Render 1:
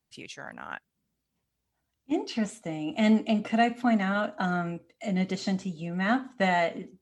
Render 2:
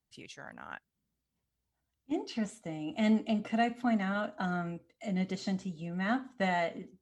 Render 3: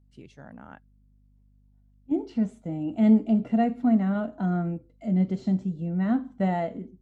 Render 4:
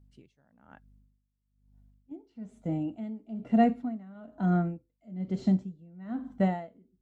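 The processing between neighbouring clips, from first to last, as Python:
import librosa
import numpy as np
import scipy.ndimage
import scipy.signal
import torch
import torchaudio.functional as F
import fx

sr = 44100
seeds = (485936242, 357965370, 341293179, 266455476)

y1 = fx.low_shelf(x, sr, hz=84.0, db=7.5)
y1 = fx.notch(y1, sr, hz=2500.0, q=20.0)
y1 = y1 * librosa.db_to_amplitude(-6.0)
y2 = fx.tilt_shelf(y1, sr, db=9.0, hz=860.0)
y2 = fx.add_hum(y2, sr, base_hz=50, snr_db=33)
y2 = fx.hpss(y2, sr, part='percussive', gain_db=-5)
y2 = y2 * librosa.db_to_amplitude(1.5)
y3 = y2 * 10.0 ** (-24 * (0.5 - 0.5 * np.cos(2.0 * np.pi * 1.1 * np.arange(len(y2)) / sr)) / 20.0)
y3 = y3 * librosa.db_to_amplitude(1.5)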